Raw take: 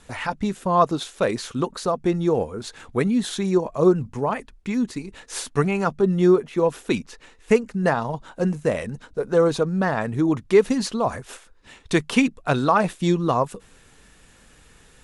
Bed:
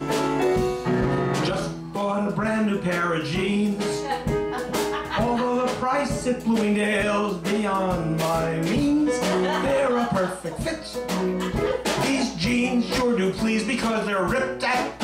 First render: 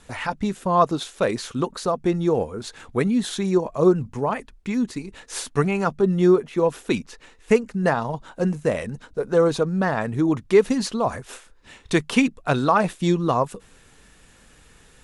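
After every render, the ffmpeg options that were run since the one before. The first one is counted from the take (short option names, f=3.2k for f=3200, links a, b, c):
-filter_complex "[0:a]asettb=1/sr,asplit=3[a][b][c];[a]atrim=end=11.284[d];[b]atrim=start=11.28:end=11.94,asetpts=PTS-STARTPTS,afade=t=in:d=0.004:c=qsin,afade=t=out:st=0.656:d=0.004:c=qsin,asplit=2[e][f];[f]adelay=32,volume=-8.5dB[g];[e][g]amix=inputs=2:normalize=0,atrim=end_sample=29106[h];[c]atrim=start=11.936[i];[d][h]acrossfade=d=0.004:c1=hsin:c2=qsin[j];[j][i]acrossfade=d=0.004:c1=qsin:c2=hsin"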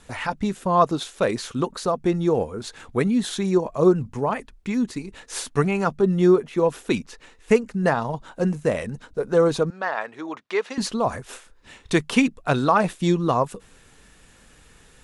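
-filter_complex "[0:a]asettb=1/sr,asplit=3[a][b][c];[a]atrim=end=9.704[d];[b]atrim=start=9.7:end=10.78,asetpts=PTS-STARTPTS,afade=t=in:d=0.004:c=qsin,afade=t=out:st=1.076:d=0.004:c=qsin,highpass=680,lowpass=4.6k[e];[c]atrim=start=10.776[f];[d][e]acrossfade=d=0.004:c1=hsin:c2=qsin[g];[g][f]acrossfade=d=0.004:c1=qsin:c2=hsin"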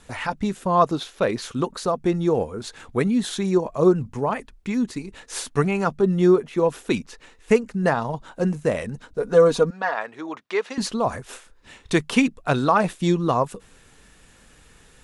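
-filter_complex "[0:a]asettb=1/sr,asplit=3[a][b][c];[a]atrim=end=0.984[d];[b]atrim=start=0.98:end=1.42,asetpts=PTS-STARTPTS,afade=t=in:d=0.004:c=qsin,afade=t=out:st=0.436:d=0.004:c=qsin,equalizer=f=8.2k:t=o:w=0.71:g=-9[e];[c]atrim=start=1.416[f];[d][e]acrossfade=d=0.004:c1=hsin:c2=qsin[g];[g][f]acrossfade=d=0.004:c1=qsin:c2=hsin,asettb=1/sr,asplit=3[h][i][j];[h]atrim=end=9.214[k];[i]atrim=start=9.21:end=9.94,asetpts=PTS-STARTPTS,afade=t=in:d=0.004:c=qsin,afade=t=out:st=0.726:d=0.004:c=qsin,aecho=1:1:4.2:0.65,atrim=end_sample=32193[l];[j]atrim=start=9.936[m];[k][l]acrossfade=d=0.004:c1=hsin:c2=qsin[n];[n][m]acrossfade=d=0.004:c1=qsin:c2=hsin"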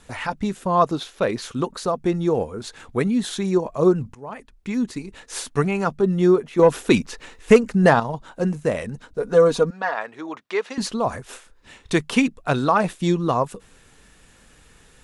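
-filter_complex "[0:a]asettb=1/sr,asplit=3[a][b][c];[a]atrim=end=6.594[d];[b]atrim=start=6.59:end=8,asetpts=PTS-STARTPTS,afade=t=in:d=0.004:c=qsin,afade=t=out:st=1.406:d=0.004:c=qsin,acontrast=81[e];[c]atrim=start=7.996[f];[d][e]acrossfade=d=0.004:c1=hsin:c2=qsin[g];[g][f]acrossfade=d=0.004:c1=qsin:c2=hsin,asplit=2[h][i];[h]atrim=end=4.15,asetpts=PTS-STARTPTS,afade=t=out:st=4.146:d=0.004:c=hsin:silence=0.0891251[j];[i]atrim=start=4.15,asetpts=PTS-STARTPTS,afade=t=in:d=0.63:silence=0.0891251[k];[j][k]concat=n=2:v=0:a=1"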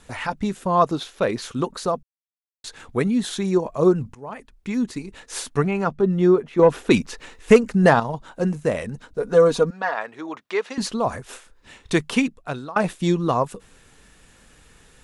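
-filter_complex "[0:a]asettb=1/sr,asplit=3[a][b][c];[a]atrim=end=5.574[d];[b]atrim=start=5.57:end=6.91,asetpts=PTS-STARTPTS,afade=t=in:d=0.004:c=qsin,afade=t=out:st=1.336:d=0.004:c=qsin,highshelf=f=5.3k:g=-11.5[e];[c]atrim=start=6.906[f];[d][e]acrossfade=d=0.004:c1=hsin:c2=qsin[g];[g][f]acrossfade=d=0.004:c1=qsin:c2=hsin,asplit=4[h][i][j][k];[h]atrim=end=2.03,asetpts=PTS-STARTPTS,afade=t=out:st=2.026:d=0.004:c=hsin[l];[i]atrim=start=2.03:end=2.64,asetpts=PTS-STARTPTS,volume=0[m];[j]atrim=start=2.64:end=12.76,asetpts=PTS-STARTPTS,afade=t=in:d=0.004:c=hsin,afade=t=out:st=9.42:d=0.7:silence=0.0749894[n];[k]atrim=start=12.76,asetpts=PTS-STARTPTS,afade=t=in:d=0.004:c=hsin:silence=0.0749894[o];[l][m][n][o]concat=n=4:v=0:a=1"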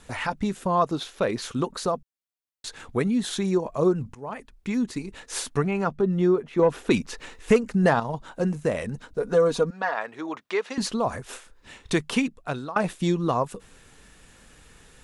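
-af "acompressor=threshold=-25dB:ratio=1.5"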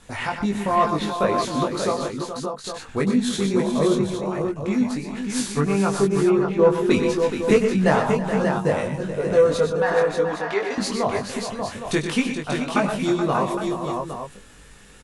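-filter_complex "[0:a]asplit=2[a][b];[b]adelay=20,volume=-3dB[c];[a][c]amix=inputs=2:normalize=0,aecho=1:1:97|122|324|426|586|812:0.266|0.376|0.15|0.335|0.531|0.316"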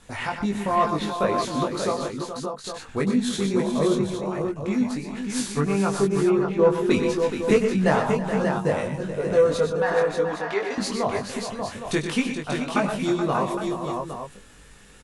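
-af "volume=-2dB"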